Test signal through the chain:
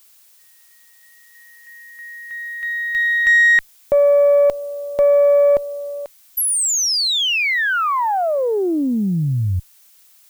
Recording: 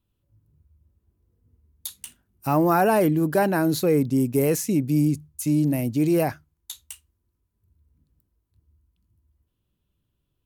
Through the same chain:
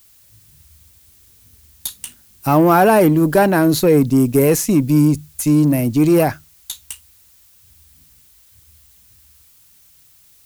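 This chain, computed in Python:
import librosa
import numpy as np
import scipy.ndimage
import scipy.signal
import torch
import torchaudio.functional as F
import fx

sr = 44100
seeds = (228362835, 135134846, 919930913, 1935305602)

y = fx.cheby_harmonics(x, sr, harmonics=(5, 8), levels_db=(-31, -30), full_scale_db=-9.0)
y = fx.dmg_noise_colour(y, sr, seeds[0], colour='blue', level_db=-58.0)
y = y * librosa.db_to_amplitude(7.0)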